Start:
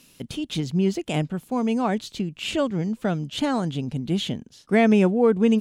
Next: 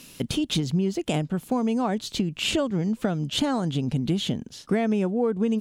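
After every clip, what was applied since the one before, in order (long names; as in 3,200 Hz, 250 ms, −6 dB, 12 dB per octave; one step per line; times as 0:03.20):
dynamic equaliser 2,300 Hz, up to −4 dB, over −42 dBFS, Q 1.5
downward compressor 6 to 1, threshold −29 dBFS, peak gain reduction 14.5 dB
level +7.5 dB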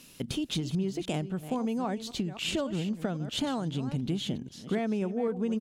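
delay that plays each chunk backwards 264 ms, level −12 dB
slap from a distant wall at 49 metres, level −27 dB
level −6.5 dB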